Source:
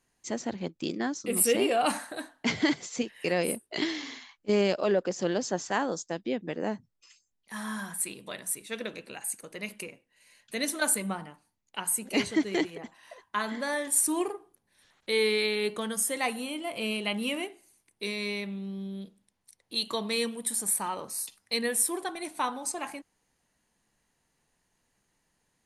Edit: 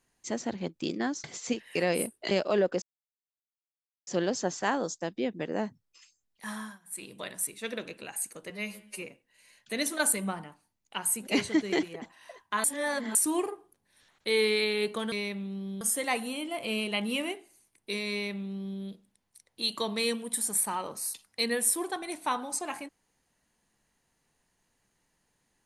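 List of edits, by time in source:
1.24–2.73 s: delete
3.80–4.64 s: delete
5.15 s: insert silence 1.25 s
7.58–8.21 s: dip -24 dB, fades 0.29 s
9.58–9.84 s: stretch 2×
13.46–13.97 s: reverse
18.24–18.93 s: copy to 15.94 s

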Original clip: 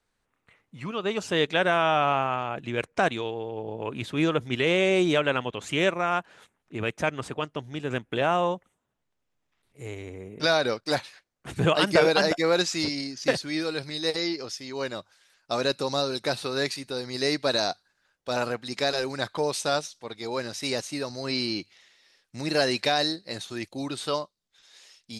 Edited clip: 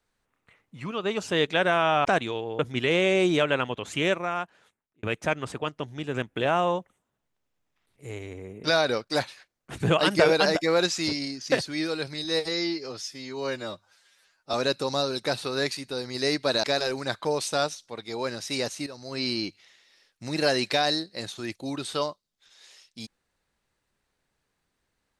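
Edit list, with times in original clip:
2.05–2.95 s: delete
3.49–4.35 s: delete
5.72–6.79 s: fade out
14.00–15.53 s: stretch 1.5×
17.63–18.76 s: delete
20.99–21.42 s: fade in, from -12.5 dB

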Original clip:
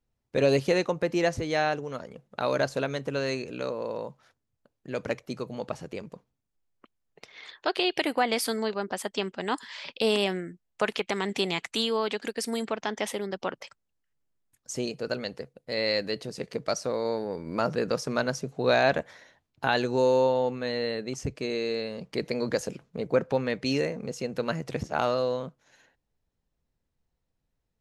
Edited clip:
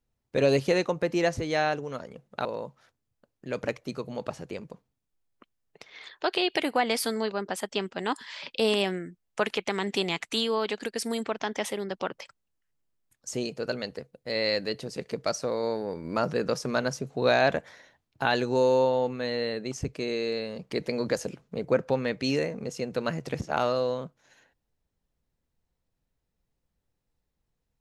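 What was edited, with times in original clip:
2.45–3.87 s: delete

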